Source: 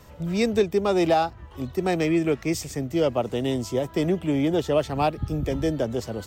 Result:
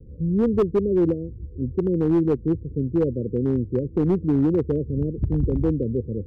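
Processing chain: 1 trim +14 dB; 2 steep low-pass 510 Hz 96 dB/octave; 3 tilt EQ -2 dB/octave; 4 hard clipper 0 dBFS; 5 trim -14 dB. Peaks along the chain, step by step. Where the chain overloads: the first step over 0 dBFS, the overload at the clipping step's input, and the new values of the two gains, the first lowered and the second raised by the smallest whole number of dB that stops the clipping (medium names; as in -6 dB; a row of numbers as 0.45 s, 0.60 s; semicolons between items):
+3.0 dBFS, +3.5 dBFS, +6.0 dBFS, 0.0 dBFS, -14.0 dBFS; step 1, 6.0 dB; step 1 +8 dB, step 5 -8 dB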